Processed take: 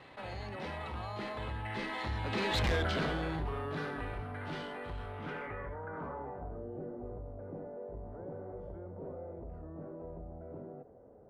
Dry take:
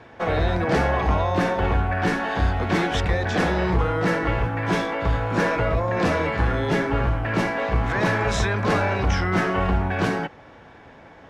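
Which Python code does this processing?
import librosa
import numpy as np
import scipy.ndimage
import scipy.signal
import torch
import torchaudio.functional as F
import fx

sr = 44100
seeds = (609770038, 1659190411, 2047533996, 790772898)

y = fx.doppler_pass(x, sr, speed_mps=47, closest_m=2.5, pass_at_s=2.69)
y = np.repeat(y[::4], 4)[:len(y)]
y = fx.filter_sweep_lowpass(y, sr, from_hz=4000.0, to_hz=530.0, start_s=5.07, end_s=6.62, q=2.5)
y = 10.0 ** (-27.5 / 20.0) * np.tanh(y / 10.0 ** (-27.5 / 20.0))
y = fx.env_flatten(y, sr, amount_pct=50)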